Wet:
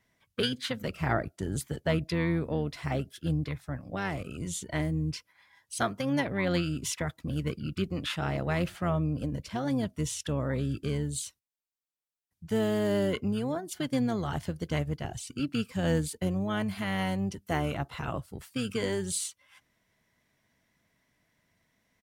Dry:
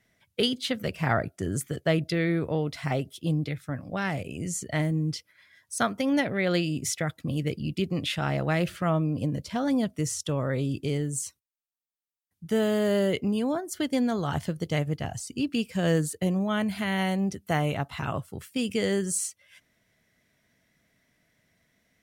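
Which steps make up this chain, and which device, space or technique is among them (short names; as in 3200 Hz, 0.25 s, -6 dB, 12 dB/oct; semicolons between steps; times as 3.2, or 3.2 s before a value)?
octave pedal (harmoniser -12 st -8 dB); gain -4 dB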